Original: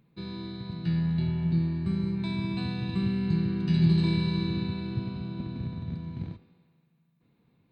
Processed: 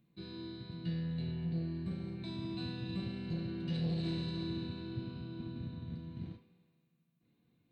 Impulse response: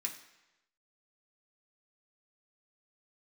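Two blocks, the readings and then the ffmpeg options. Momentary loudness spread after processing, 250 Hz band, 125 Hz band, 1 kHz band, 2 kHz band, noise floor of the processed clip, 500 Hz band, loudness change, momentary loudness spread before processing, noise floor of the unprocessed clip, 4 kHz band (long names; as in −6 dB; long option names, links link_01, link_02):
9 LU, −11.0 dB, −11.0 dB, −10.5 dB, −10.5 dB, −76 dBFS, −7.0 dB, −11.0 dB, 13 LU, −69 dBFS, −6.5 dB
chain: -filter_complex "[0:a]asoftclip=type=tanh:threshold=-22dB[link_01];[1:a]atrim=start_sample=2205,afade=type=out:start_time=0.17:duration=0.01,atrim=end_sample=7938,asetrate=70560,aresample=44100[link_02];[link_01][link_02]afir=irnorm=-1:irlink=0,volume=-1dB"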